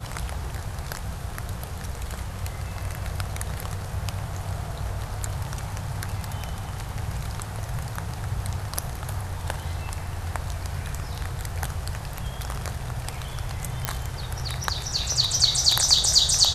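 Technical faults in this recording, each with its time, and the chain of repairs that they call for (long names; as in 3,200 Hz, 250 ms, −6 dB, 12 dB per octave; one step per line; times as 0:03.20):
0:13.85: click −7 dBFS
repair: click removal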